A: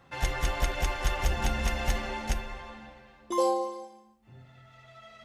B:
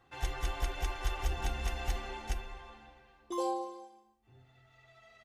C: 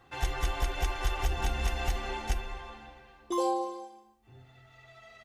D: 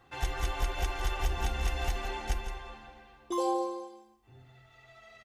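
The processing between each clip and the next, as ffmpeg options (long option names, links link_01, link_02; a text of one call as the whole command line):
ffmpeg -i in.wav -af "aecho=1:1:2.6:0.56,volume=-8.5dB" out.wav
ffmpeg -i in.wav -af "alimiter=level_in=1dB:limit=-24dB:level=0:latency=1:release=196,volume=-1dB,volume=6.5dB" out.wav
ffmpeg -i in.wav -af "aecho=1:1:166:0.299,volume=-1.5dB" out.wav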